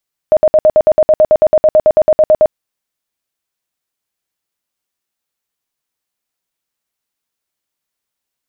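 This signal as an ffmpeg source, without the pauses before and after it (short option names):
-f lavfi -i "aevalsrc='0.631*sin(2*PI*620*mod(t,0.11))*lt(mod(t,0.11),30/620)':d=2.2:s=44100"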